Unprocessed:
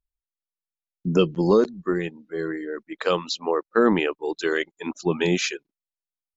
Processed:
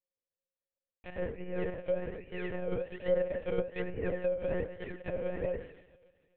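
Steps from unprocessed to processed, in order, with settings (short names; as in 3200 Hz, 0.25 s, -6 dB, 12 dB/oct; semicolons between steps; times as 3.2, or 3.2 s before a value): in parallel at -7 dB: wavefolder -21 dBFS; on the sum: bell 170 Hz +12 dB 1.5 oct; two-slope reverb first 0.5 s, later 1.9 s, from -22 dB, DRR -1.5 dB; reverse; compressor 16:1, threshold -16 dBFS, peak gain reduction 14 dB; reverse; HPF 100 Hz 6 dB/oct; decimation with a swept rate 33×, swing 100% 1.2 Hz; treble ducked by the level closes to 1400 Hz, closed at -17 dBFS; vowel filter e; monotone LPC vocoder at 8 kHz 180 Hz; gain -1 dB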